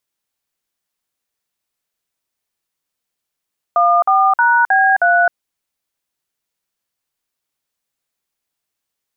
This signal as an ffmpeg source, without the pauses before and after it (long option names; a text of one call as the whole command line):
ffmpeg -f lavfi -i "aevalsrc='0.251*clip(min(mod(t,0.314),0.263-mod(t,0.314))/0.002,0,1)*(eq(floor(t/0.314),0)*(sin(2*PI*697*mod(t,0.314))+sin(2*PI*1209*mod(t,0.314)))+eq(floor(t/0.314),1)*(sin(2*PI*770*mod(t,0.314))+sin(2*PI*1209*mod(t,0.314)))+eq(floor(t/0.314),2)*(sin(2*PI*941*mod(t,0.314))+sin(2*PI*1477*mod(t,0.314)))+eq(floor(t/0.314),3)*(sin(2*PI*770*mod(t,0.314))+sin(2*PI*1633*mod(t,0.314)))+eq(floor(t/0.314),4)*(sin(2*PI*697*mod(t,0.314))+sin(2*PI*1477*mod(t,0.314))))':duration=1.57:sample_rate=44100" out.wav